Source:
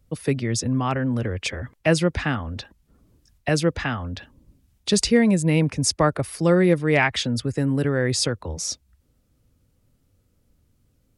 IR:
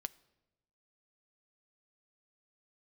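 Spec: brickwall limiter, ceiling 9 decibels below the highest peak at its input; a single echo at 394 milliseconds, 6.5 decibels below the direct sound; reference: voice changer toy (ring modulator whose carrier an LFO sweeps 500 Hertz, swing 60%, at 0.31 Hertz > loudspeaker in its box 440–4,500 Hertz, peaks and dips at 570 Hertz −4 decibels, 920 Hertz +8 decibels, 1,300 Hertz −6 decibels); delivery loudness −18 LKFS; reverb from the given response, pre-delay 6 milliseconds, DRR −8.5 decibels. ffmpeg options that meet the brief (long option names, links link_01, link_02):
-filter_complex "[0:a]alimiter=limit=-16dB:level=0:latency=1,aecho=1:1:394:0.473,asplit=2[link_01][link_02];[1:a]atrim=start_sample=2205,adelay=6[link_03];[link_02][link_03]afir=irnorm=-1:irlink=0,volume=11dB[link_04];[link_01][link_04]amix=inputs=2:normalize=0,aeval=exprs='val(0)*sin(2*PI*500*n/s+500*0.6/0.31*sin(2*PI*0.31*n/s))':channel_layout=same,highpass=440,equalizer=frequency=570:width_type=q:width=4:gain=-4,equalizer=frequency=920:width_type=q:width=4:gain=8,equalizer=frequency=1300:width_type=q:width=4:gain=-6,lowpass=frequency=4500:width=0.5412,lowpass=frequency=4500:width=1.3066,volume=2.5dB"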